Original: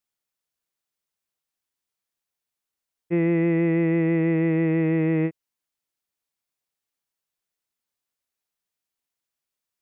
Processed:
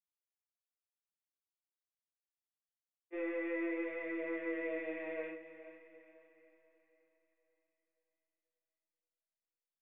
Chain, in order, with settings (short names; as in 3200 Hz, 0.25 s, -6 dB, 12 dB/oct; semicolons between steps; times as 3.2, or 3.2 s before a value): HPF 460 Hz 24 dB/oct; notch 820 Hz, Q 12; expander -21 dBFS; limiter -47.5 dBFS, peak gain reduction 11 dB; chorus 0.45 Hz, delay 18 ms, depth 3.6 ms; diffused feedback echo 0.459 s, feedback 43%, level -13 dB; shoebox room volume 190 m³, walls furnished, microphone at 3.7 m; gain +9 dB